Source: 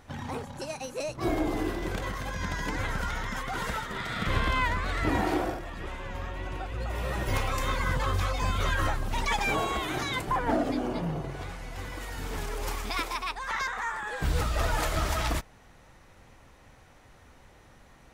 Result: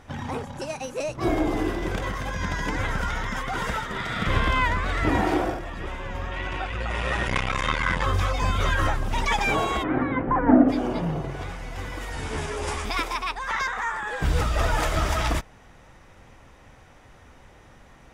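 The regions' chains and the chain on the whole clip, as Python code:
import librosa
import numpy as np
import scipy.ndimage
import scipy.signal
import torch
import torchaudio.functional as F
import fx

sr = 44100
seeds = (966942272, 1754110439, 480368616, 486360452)

y = fx.chain(x, sr, fx.peak_eq(hz=2400.0, db=9.0, octaves=2.6),
    fx.resample_bad(factor=2, down='none', up='filtered'),
    fx.transformer_sat(knee_hz=430.0), at=(6.31, 8.03))
y = fx.lowpass(y, sr, hz=1900.0, slope=24, at=(9.82, 10.68), fade=0.02)
y = fx.peak_eq(y, sr, hz=260.0, db=13.0, octaves=0.47, at=(9.82, 10.68), fade=0.02)
y = fx.dmg_tone(y, sr, hz=520.0, level_db=-41.0, at=(9.82, 10.68), fade=0.02)
y = fx.chain(y, sr, fx.doubler(ms=14.0, db=-3),
    fx.resample_bad(factor=2, down='none', up='filtered'), at=(12.12, 12.85))
y = fx.high_shelf(y, sr, hz=11000.0, db=-10.5)
y = fx.notch(y, sr, hz=4200.0, q=11.0)
y = y * 10.0 ** (4.5 / 20.0)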